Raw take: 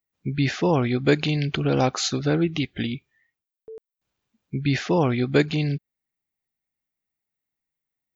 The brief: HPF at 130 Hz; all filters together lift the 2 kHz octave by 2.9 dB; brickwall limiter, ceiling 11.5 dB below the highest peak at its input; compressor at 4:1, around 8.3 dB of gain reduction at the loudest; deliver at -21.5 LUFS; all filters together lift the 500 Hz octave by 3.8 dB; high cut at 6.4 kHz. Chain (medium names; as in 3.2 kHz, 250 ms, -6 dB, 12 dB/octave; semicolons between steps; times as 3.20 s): high-pass 130 Hz; low-pass 6.4 kHz; peaking EQ 500 Hz +4.5 dB; peaking EQ 2 kHz +3.5 dB; compression 4:1, threshold -20 dBFS; trim +9.5 dB; peak limiter -10.5 dBFS